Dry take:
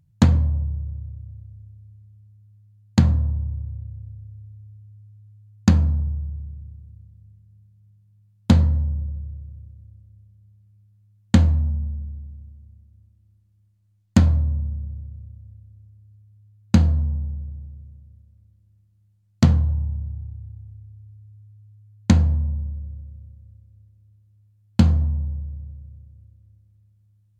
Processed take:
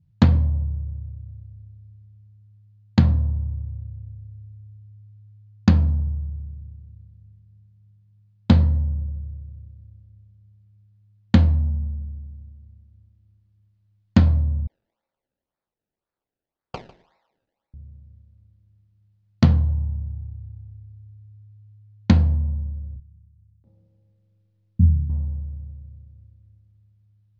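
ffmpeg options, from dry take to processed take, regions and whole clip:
-filter_complex "[0:a]asettb=1/sr,asplit=3[s0][s1][s2];[s0]atrim=end=14.674[s3];[s1]atrim=start=14.67:end=17.74,asetpts=PTS-STARTPTS,afade=t=in:d=0.004:c=qsin,afade=t=out:st=3.066:d=0.004:c=qsin,highpass=f=850:w=0.5412,highpass=f=850:w=1.3066,acrusher=samples=28:mix=1:aa=0.000001:lfo=1:lforange=28:lforate=1.9,aecho=1:1:150:0.133,atrim=end_sample=135387[s4];[s2]atrim=start=17.736[s5];[s3][s4]acrossfade=d=0.004:c1=hsin:c2=qsin[s6];[s6][s5]acrossfade=d=0.004:c1=qsin:c2=hsin,asettb=1/sr,asplit=3[s7][s8][s9];[s7]atrim=end=22.964[s10];[s8]atrim=start=22.96:end=25.1,asetpts=PTS-STARTPTS,afade=t=in:d=0.004:c=qsin,afade=t=out:st=2.136:d=0.004:c=qsin,asplit=2[s11][s12];[s12]adelay=34,volume=0.708[s13];[s11][s13]amix=inputs=2:normalize=0,atrim=end_sample=94374,acrossover=split=180[s14][s15];[s15]adelay=680[s16];[s14][s16]amix=inputs=2:normalize=0,atrim=end_sample=94374[s17];[s9]atrim=start=25.096[s18];[s10][s17]acrossfade=d=0.004:c1=hsin:c2=qsin[s19];[s19][s18]acrossfade=d=0.004:c1=qsin:c2=hsin,lowpass=f=4900:w=0.5412,lowpass=f=4900:w=1.3066,adynamicequalizer=threshold=0.00355:dfrequency=1400:dqfactor=1.8:tfrequency=1400:tqfactor=1.8:attack=5:release=100:ratio=0.375:range=3.5:mode=cutabove:tftype=bell"

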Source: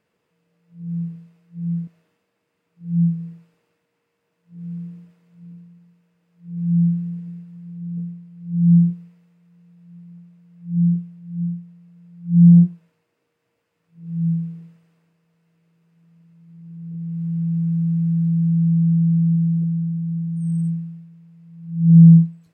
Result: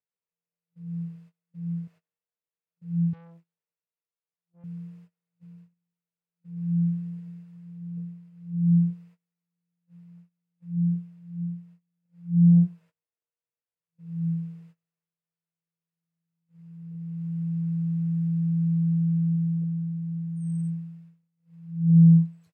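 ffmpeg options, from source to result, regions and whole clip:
-filter_complex "[0:a]asettb=1/sr,asplit=3[s0][s1][s2];[s0]atrim=end=3.134[s3];[s1]atrim=start=3.13:end=4.64,asetpts=PTS-STARTPTS,afade=t=in:d=0.004:c=qsin,afade=t=out:st=1.506:d=0.004:c=qsin,aeval=exprs='(tanh(178*val(0)+0.5)-tanh(0.5))/178':c=same,asplit=2[s4][s5];[s5]adelay=12,volume=0.501[s6];[s4][s6]amix=inputs=2:normalize=0,atrim=end_sample=66591[s7];[s2]atrim=start=4.636[s8];[s3][s7]acrossfade=d=0.004:c1=hsin:c2=qsin[s9];[s9][s8]acrossfade=d=0.004:c1=qsin:c2=hsin,highpass=88,equalizer=f=270:w=1.8:g=-13.5,agate=range=0.0562:threshold=0.00398:ratio=16:detection=peak,volume=0.708"

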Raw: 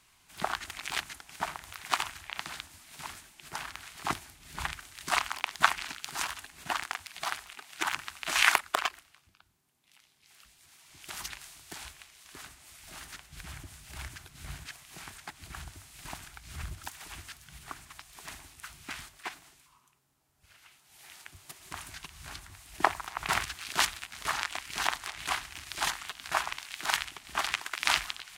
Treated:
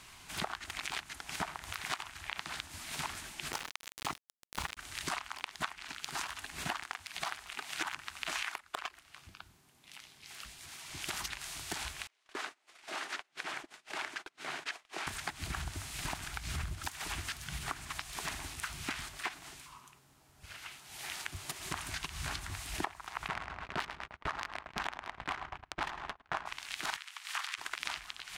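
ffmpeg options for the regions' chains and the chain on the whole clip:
-filter_complex "[0:a]asettb=1/sr,asplit=3[s0][s1][s2];[s0]atrim=end=3.524[s3];[s1]atrim=start=3.52:end=4.77,asetpts=PTS-STARTPTS,afade=t=in:d=0.004:c=qsin,afade=t=out:st=1.246:d=0.004:c=qsin,highshelf=f=4000:g=3,bandreject=f=1600:w=13,aeval=exprs='val(0)*gte(abs(val(0)),0.0168)':c=same[s4];[s2]atrim=start=4.766[s5];[s3][s4]acrossfade=d=0.004:c1=hsin:c2=qsin[s6];[s6][s5]acrossfade=d=0.004:c1=qsin:c2=hsin,asettb=1/sr,asplit=3[s7][s8][s9];[s7]atrim=end=12.074[s10];[s8]atrim=start=12.07:end=15.07,asetpts=PTS-STARTPTS,afade=t=in:d=0.004:c=qsin,afade=t=out:st=2.996:d=0.004:c=qsin,highpass=f=360:w=0.5412,highpass=f=360:w=1.3066,agate=range=0.0501:threshold=0.00251:ratio=16:release=100:detection=peak,aemphasis=mode=reproduction:type=bsi[s11];[s9]atrim=start=15.066[s12];[s10][s11]acrossfade=d=0.004:c1=hsin:c2=qsin[s13];[s13][s12]acrossfade=d=0.004:c1=qsin:c2=hsin,asettb=1/sr,asplit=3[s14][s15][s16];[s14]atrim=end=23.284[s17];[s15]atrim=start=23.28:end=26.46,asetpts=PTS-STARTPTS,afade=t=in:d=0.004:c=qsin,afade=t=out:st=3.176:d=0.004:c=qsin,aecho=1:1:105|210|315|420|525|630|735:0.398|0.227|0.129|0.0737|0.042|0.024|0.0137,atrim=end_sample=140238,adynamicsmooth=sensitivity=2:basefreq=950,agate=range=0.0316:threshold=0.00447:ratio=16:release=100:detection=peak[s18];[s16]atrim=start=26.456[s19];[s17][s18]acrossfade=d=0.004:c1=hsin:c2=qsin[s20];[s20][s19]acrossfade=d=0.004:c1=qsin:c2=hsin,asettb=1/sr,asplit=3[s21][s22][s23];[s21]atrim=end=26.974[s24];[s22]atrim=start=26.97:end=27.58,asetpts=PTS-STARTPTS,afade=t=in:d=0.004:c=qsin,afade=t=out:st=0.606:d=0.004:c=qsin,highpass=f=990:w=0.5412,highpass=f=990:w=1.3066,acompressor=threshold=0.0224:ratio=2:attack=3.2:release=140:knee=1:detection=peak[s25];[s23]atrim=start=27.576[s26];[s24][s25]acrossfade=d=0.004:c1=hsin:c2=qsin[s27];[s27][s26]acrossfade=d=0.004:c1=qsin:c2=hsin,acompressor=threshold=0.00562:ratio=16,highshelf=f=11000:g=-8.5,volume=3.55"

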